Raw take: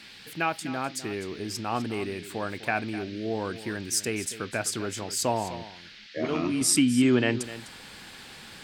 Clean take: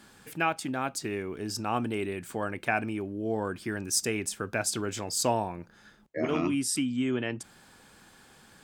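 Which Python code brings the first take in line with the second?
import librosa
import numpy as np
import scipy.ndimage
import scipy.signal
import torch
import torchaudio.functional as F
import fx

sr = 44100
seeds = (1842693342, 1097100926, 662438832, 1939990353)

y = fx.noise_reduce(x, sr, print_start_s=5.65, print_end_s=6.15, reduce_db=10.0)
y = fx.fix_echo_inverse(y, sr, delay_ms=253, level_db=-14.5)
y = fx.fix_level(y, sr, at_s=6.61, step_db=-7.5)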